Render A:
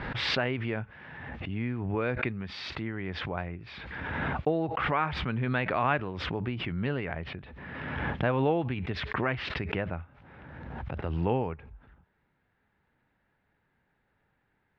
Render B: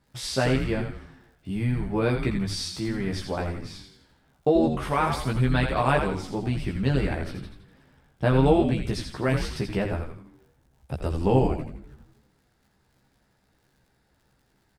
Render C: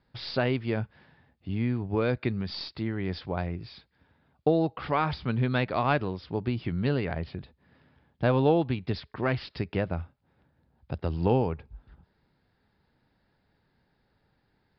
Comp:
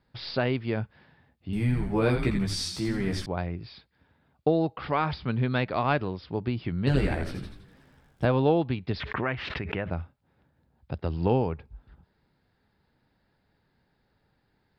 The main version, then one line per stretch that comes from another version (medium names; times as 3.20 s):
C
1.53–3.26 s: from B
6.87–8.25 s: from B
9.00–9.90 s: from A